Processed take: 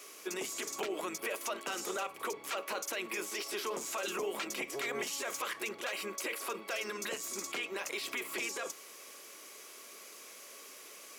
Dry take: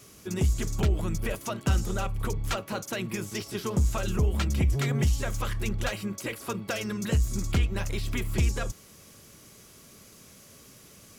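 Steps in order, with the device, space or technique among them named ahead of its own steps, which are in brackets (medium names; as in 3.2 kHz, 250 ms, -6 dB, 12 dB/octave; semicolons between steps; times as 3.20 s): laptop speaker (high-pass 360 Hz 24 dB/octave; peaking EQ 1.1 kHz +4 dB 0.26 oct; peaking EQ 2.3 kHz +5 dB 0.6 oct; peak limiter -28.5 dBFS, peak gain reduction 12 dB); trim +1.5 dB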